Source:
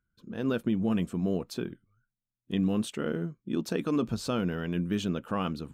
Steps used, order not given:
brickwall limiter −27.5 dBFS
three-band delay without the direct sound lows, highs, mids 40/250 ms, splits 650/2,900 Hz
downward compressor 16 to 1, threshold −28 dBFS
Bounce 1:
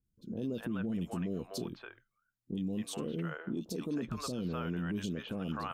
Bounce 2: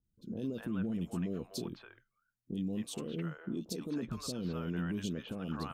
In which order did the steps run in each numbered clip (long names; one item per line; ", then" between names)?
three-band delay without the direct sound, then downward compressor, then brickwall limiter
downward compressor, then brickwall limiter, then three-band delay without the direct sound